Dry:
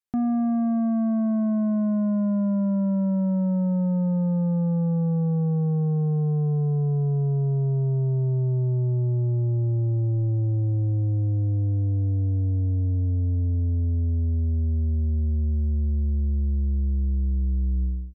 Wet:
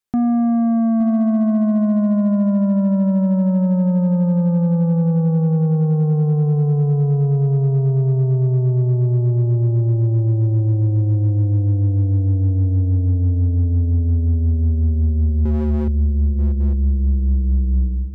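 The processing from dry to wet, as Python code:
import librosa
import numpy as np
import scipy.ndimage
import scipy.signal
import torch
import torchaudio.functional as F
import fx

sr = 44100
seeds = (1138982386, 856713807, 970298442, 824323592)

y = fx.low_shelf(x, sr, hz=220.0, db=5.5, at=(15.45, 15.88))
y = y + 10.0 ** (-12.5 / 20.0) * np.pad(y, (int(866 * sr / 1000.0), 0))[:len(y)]
y = 10.0 ** (-19.5 / 20.0) * (np.abs((y / 10.0 ** (-19.5 / 20.0) + 3.0) % 4.0 - 2.0) - 1.0)
y = F.gain(torch.from_numpy(y), 6.5).numpy()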